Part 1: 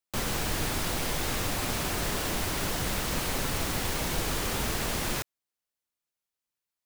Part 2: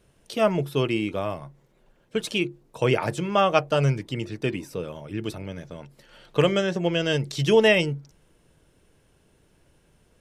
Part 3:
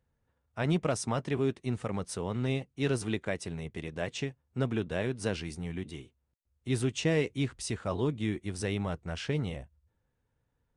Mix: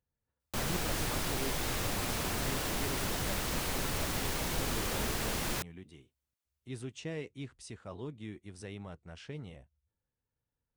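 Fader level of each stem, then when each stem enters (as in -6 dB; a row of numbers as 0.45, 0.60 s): -4.0 dB, off, -12.0 dB; 0.40 s, off, 0.00 s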